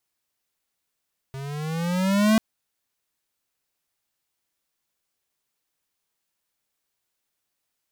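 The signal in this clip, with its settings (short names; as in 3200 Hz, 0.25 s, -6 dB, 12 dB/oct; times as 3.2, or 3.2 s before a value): gliding synth tone square, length 1.04 s, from 133 Hz, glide +9 st, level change +18 dB, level -16.5 dB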